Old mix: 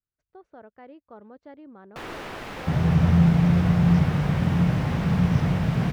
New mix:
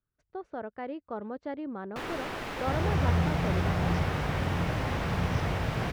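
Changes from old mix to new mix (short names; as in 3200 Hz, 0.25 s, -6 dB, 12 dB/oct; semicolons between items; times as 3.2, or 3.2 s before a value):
speech +9.0 dB; second sound: add bell 170 Hz -13.5 dB 1.2 oct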